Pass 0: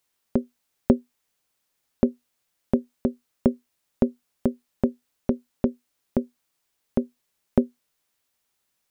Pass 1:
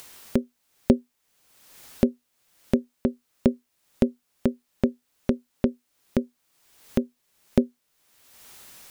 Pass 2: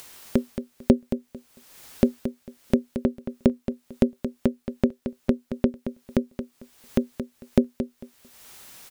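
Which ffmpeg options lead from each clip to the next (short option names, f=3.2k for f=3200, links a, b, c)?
-af "acompressor=mode=upward:threshold=-25dB:ratio=2.5"
-af "aecho=1:1:224|448|672:0.316|0.0632|0.0126,volume=1dB"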